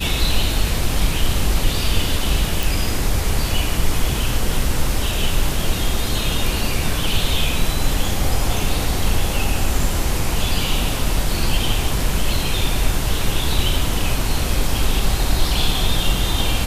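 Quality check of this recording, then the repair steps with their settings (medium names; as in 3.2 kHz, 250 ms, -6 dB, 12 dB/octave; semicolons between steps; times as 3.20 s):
2.63 s: pop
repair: de-click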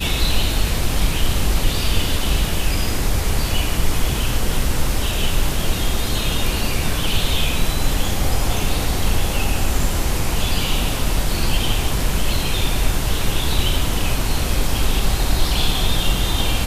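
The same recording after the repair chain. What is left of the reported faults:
nothing left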